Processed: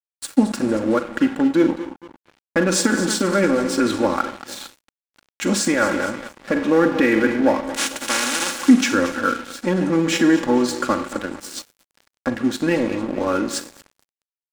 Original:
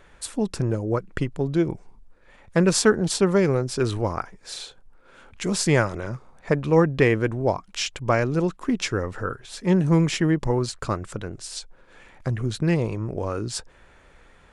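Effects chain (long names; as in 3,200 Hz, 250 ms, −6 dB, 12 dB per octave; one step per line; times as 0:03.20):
0:07.64–0:08.59: compressing power law on the bin magnitudes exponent 0.13
on a send: repeating echo 227 ms, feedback 52%, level −15 dB
on the sum: four-comb reverb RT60 0.66 s, combs from 33 ms, DRR 9 dB
in parallel at −3 dB: gain into a clipping stage and back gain 14.5 dB
on the sum: brickwall limiter −10.5 dBFS, peak gain reduction 9 dB
loudspeaker in its box 200–9,400 Hz, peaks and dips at 260 Hz +7 dB, 1,500 Hz +7 dB, 4,800 Hz −3 dB
comb filter 3.6 ms, depth 80%
dead-zone distortion −32.5 dBFS
level +1 dB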